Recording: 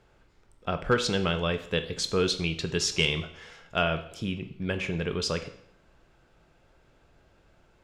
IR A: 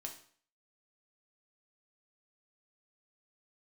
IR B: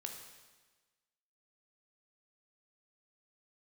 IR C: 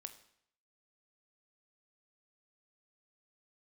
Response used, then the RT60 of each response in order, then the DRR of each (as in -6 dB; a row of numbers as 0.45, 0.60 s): C; 0.50, 1.3, 0.70 s; 1.5, 2.5, 8.5 dB